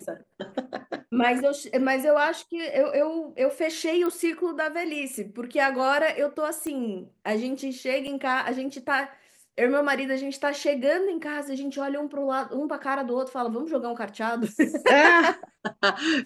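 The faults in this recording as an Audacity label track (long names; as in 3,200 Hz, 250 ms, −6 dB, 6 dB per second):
4.060000	4.060000	click −18 dBFS
6.670000	6.670000	click −22 dBFS
8.070000	8.080000	drop-out 5.9 ms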